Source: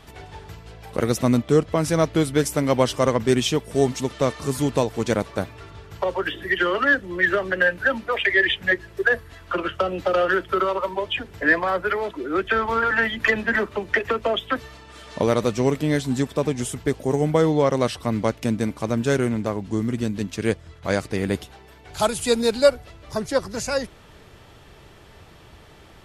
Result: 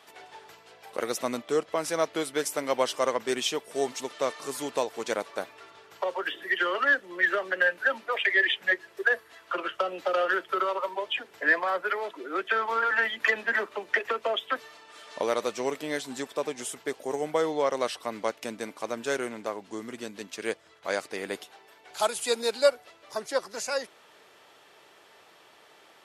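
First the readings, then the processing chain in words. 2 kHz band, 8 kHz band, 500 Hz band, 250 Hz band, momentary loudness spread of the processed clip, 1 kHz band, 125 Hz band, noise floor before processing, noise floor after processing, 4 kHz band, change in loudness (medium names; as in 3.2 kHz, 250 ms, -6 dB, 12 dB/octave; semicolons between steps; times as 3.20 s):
-4.0 dB, -4.0 dB, -7.0 dB, -14.0 dB, 13 LU, -4.0 dB, -25.5 dB, -48 dBFS, -57 dBFS, -4.0 dB, -6.0 dB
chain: high-pass 480 Hz 12 dB/octave; trim -4 dB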